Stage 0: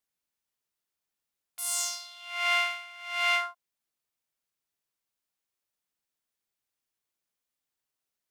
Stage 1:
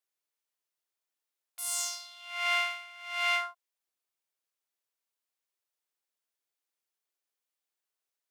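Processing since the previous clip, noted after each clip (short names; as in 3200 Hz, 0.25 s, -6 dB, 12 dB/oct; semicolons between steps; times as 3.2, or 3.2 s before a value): HPF 320 Hz 24 dB/oct; gain -2.5 dB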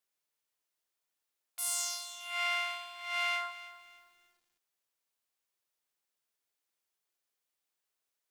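compressor 5:1, threshold -31 dBFS, peak gain reduction 7.5 dB; lo-fi delay 0.309 s, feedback 35%, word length 10-bit, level -15 dB; gain +2 dB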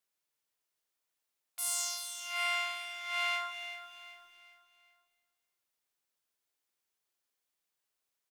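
feedback echo 0.386 s, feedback 40%, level -11.5 dB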